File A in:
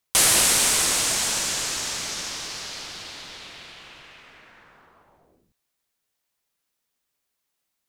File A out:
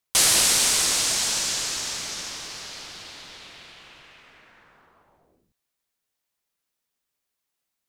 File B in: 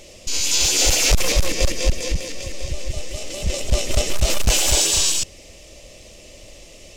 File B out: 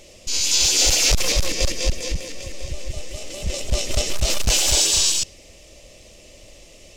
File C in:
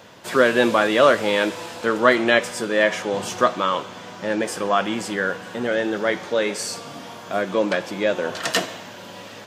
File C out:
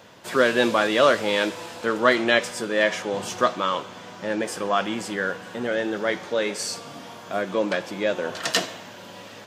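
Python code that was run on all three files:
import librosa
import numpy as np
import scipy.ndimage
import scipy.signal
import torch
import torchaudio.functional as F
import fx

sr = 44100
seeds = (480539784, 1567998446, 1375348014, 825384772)

y = fx.dynamic_eq(x, sr, hz=4800.0, q=0.97, threshold_db=-31.0, ratio=4.0, max_db=5)
y = F.gain(torch.from_numpy(y), -3.0).numpy()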